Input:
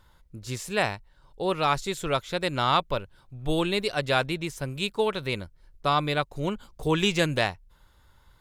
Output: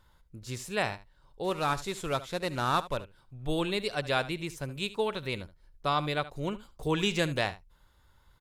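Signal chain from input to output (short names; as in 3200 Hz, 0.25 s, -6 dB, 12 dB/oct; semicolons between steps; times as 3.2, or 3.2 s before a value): 1.44–2.97 CVSD 64 kbps; on a send: echo 73 ms -16 dB; on the sum: gain -4.5 dB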